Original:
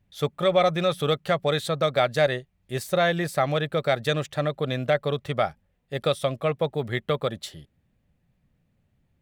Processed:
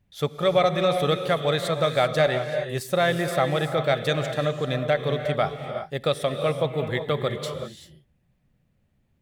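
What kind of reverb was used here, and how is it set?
non-linear reverb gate 0.41 s rising, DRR 6.5 dB

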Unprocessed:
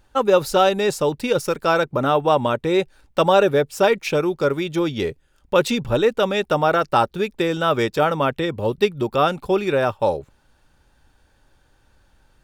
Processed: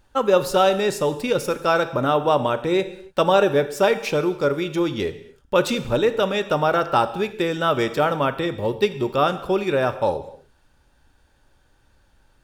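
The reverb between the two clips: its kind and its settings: non-linear reverb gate 0.31 s falling, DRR 10.5 dB; gain -1.5 dB

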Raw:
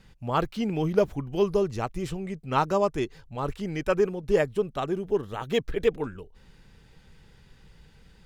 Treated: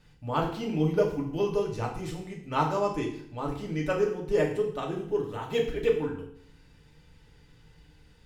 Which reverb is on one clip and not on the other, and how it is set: FDN reverb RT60 0.61 s, low-frequency decay 1.2×, high-frequency decay 1×, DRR -1.5 dB; gain -6 dB

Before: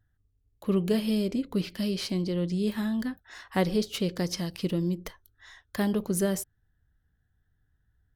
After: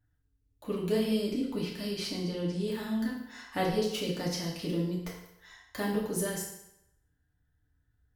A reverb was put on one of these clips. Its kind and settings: FDN reverb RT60 0.81 s, low-frequency decay 0.85×, high-frequency decay 0.9×, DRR -4.5 dB; gain -7 dB

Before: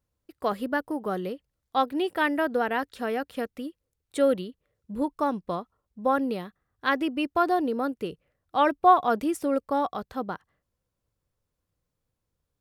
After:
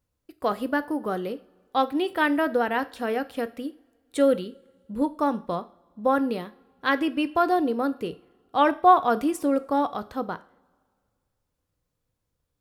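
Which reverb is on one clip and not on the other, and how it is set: two-slope reverb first 0.39 s, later 2 s, from -22 dB, DRR 11.5 dB; gain +1.5 dB

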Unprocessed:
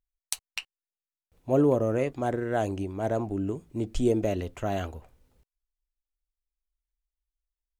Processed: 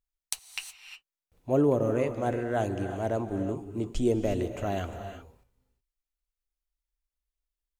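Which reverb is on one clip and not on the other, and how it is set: non-linear reverb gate 0.39 s rising, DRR 7.5 dB; gain -1.5 dB

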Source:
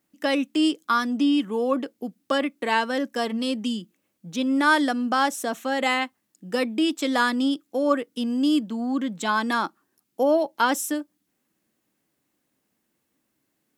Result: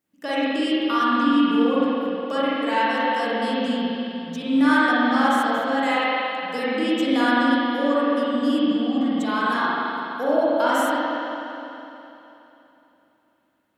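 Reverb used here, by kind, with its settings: spring tank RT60 3.2 s, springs 41/52 ms, chirp 20 ms, DRR -9.5 dB; gain -7 dB

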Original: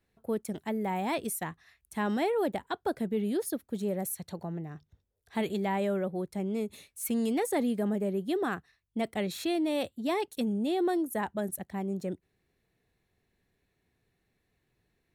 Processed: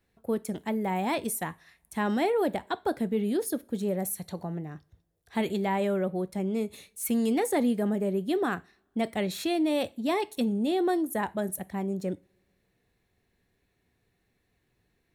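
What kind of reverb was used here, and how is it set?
two-slope reverb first 0.3 s, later 1.8 s, from -28 dB, DRR 14.5 dB; gain +2.5 dB

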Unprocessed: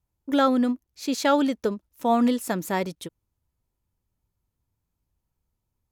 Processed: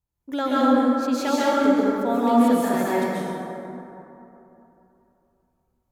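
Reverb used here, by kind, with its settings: plate-style reverb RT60 3.1 s, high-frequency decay 0.4×, pre-delay 0.115 s, DRR -8.5 dB; gain -6 dB

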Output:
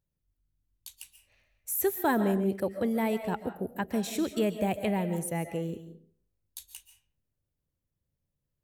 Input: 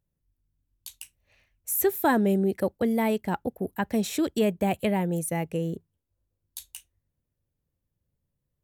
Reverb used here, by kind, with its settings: digital reverb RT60 0.5 s, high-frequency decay 0.7×, pre-delay 0.1 s, DRR 9 dB; gain -4 dB

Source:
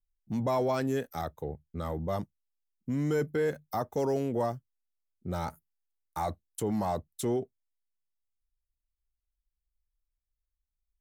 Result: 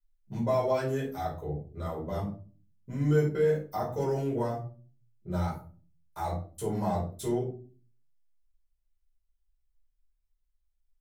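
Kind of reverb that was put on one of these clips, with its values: shoebox room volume 250 m³, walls furnished, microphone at 4.9 m; gain -9.5 dB

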